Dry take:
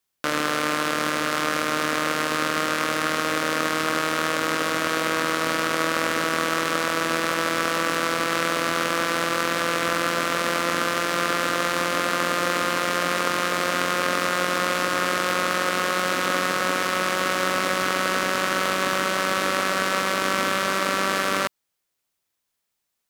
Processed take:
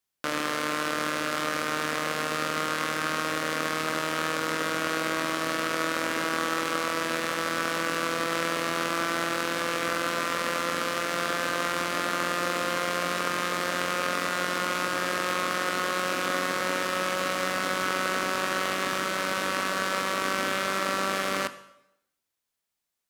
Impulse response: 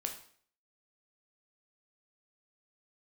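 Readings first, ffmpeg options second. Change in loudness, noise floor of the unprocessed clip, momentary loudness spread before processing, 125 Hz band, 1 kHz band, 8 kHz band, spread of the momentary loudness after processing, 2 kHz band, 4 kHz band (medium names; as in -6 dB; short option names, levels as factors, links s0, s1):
-4.5 dB, -79 dBFS, 1 LU, -4.5 dB, -4.5 dB, -4.5 dB, 1 LU, -4.5 dB, -4.5 dB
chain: -filter_complex "[0:a]asplit=2[s0][s1];[1:a]atrim=start_sample=2205,asetrate=27783,aresample=44100[s2];[s1][s2]afir=irnorm=-1:irlink=0,volume=0.376[s3];[s0][s3]amix=inputs=2:normalize=0,volume=0.398"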